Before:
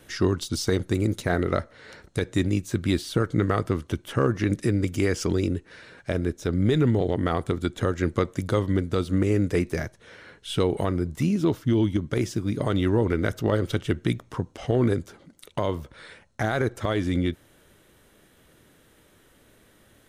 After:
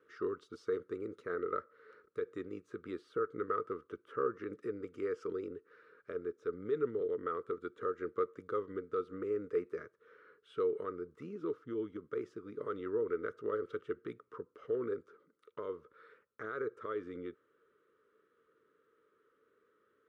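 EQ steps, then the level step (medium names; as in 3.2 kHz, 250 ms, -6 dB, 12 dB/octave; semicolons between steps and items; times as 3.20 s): two resonant band-passes 750 Hz, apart 1.5 oct; -4.5 dB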